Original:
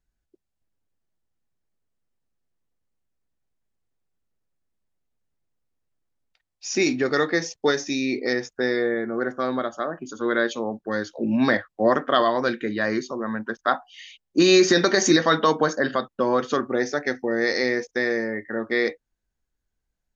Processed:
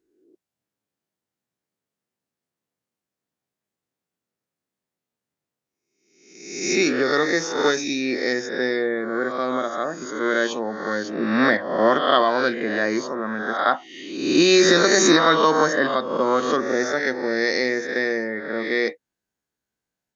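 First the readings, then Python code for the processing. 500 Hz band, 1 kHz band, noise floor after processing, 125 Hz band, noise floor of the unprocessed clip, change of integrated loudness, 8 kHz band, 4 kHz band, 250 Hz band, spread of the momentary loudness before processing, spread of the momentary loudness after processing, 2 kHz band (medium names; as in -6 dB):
+2.0 dB, +3.5 dB, under -85 dBFS, -1.5 dB, -81 dBFS, +2.5 dB, no reading, +3.5 dB, +1.0 dB, 11 LU, 12 LU, +3.0 dB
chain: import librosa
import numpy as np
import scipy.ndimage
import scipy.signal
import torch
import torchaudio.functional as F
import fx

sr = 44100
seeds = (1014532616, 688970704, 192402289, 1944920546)

y = fx.spec_swells(x, sr, rise_s=0.85)
y = scipy.signal.sosfilt(scipy.signal.butter(2, 160.0, 'highpass', fs=sr, output='sos'), y)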